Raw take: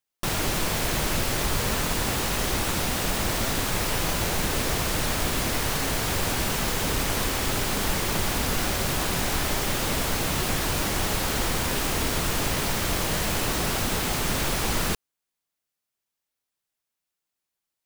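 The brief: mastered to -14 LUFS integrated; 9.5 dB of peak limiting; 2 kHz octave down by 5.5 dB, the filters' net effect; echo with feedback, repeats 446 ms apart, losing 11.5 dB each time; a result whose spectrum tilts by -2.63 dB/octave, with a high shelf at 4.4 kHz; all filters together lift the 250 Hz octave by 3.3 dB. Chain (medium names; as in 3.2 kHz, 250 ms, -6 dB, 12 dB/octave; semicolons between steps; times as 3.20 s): peaking EQ 250 Hz +4.5 dB; peaking EQ 2 kHz -8.5 dB; treble shelf 4.4 kHz +5.5 dB; peak limiter -19.5 dBFS; feedback delay 446 ms, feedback 27%, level -11.5 dB; trim +13.5 dB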